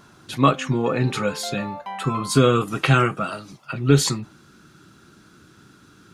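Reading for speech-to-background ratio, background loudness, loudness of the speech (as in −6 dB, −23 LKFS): 14.0 dB, −35.5 LKFS, −21.5 LKFS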